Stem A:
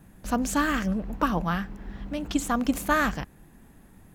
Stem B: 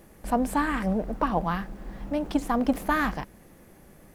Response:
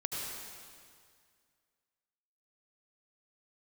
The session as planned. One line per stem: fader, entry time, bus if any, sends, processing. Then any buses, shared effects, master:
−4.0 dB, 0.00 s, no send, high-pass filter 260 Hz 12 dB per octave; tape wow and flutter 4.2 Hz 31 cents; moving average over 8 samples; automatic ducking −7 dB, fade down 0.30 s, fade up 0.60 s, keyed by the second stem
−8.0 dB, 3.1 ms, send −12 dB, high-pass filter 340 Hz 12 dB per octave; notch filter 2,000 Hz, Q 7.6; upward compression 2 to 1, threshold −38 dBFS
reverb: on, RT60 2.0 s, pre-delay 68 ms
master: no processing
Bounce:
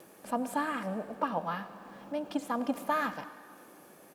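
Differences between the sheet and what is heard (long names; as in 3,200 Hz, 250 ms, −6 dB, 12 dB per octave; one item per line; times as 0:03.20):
stem A: missing tape wow and flutter 4.2 Hz 31 cents
stem B: polarity flipped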